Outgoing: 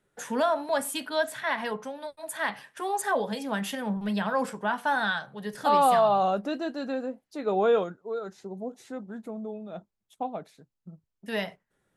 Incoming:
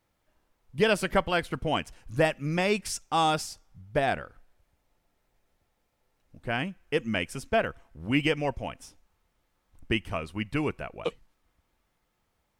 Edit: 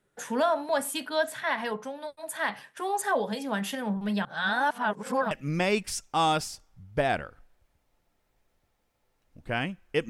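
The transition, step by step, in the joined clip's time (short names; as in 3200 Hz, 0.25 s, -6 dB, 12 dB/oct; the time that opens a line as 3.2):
outgoing
4.25–5.31 reverse
5.31 switch to incoming from 2.29 s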